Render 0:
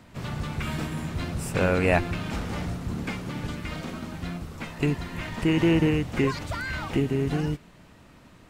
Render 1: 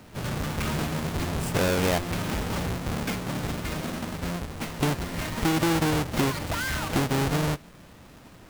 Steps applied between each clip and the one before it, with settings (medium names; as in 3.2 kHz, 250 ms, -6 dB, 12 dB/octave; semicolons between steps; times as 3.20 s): square wave that keeps the level; bass shelf 270 Hz -4 dB; compression 6:1, threshold -21 dBFS, peak gain reduction 7.5 dB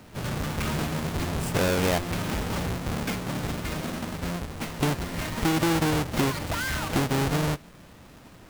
no audible change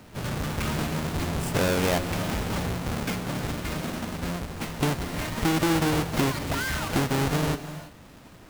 gated-style reverb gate 360 ms rising, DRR 11.5 dB